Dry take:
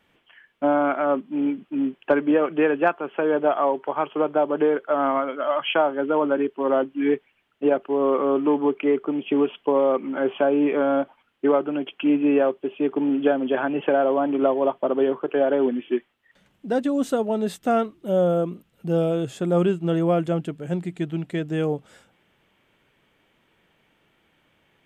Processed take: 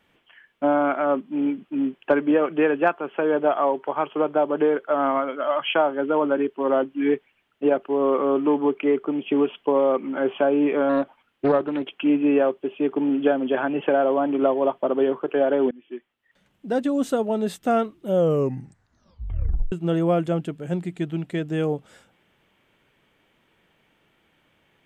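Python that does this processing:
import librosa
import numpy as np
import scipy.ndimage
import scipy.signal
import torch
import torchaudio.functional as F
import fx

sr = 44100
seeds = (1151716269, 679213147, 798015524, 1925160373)

y = fx.doppler_dist(x, sr, depth_ms=0.29, at=(10.89, 12.01))
y = fx.edit(y, sr, fx.fade_in_from(start_s=15.71, length_s=1.12, floor_db=-23.5),
    fx.tape_stop(start_s=18.14, length_s=1.58), tone=tone)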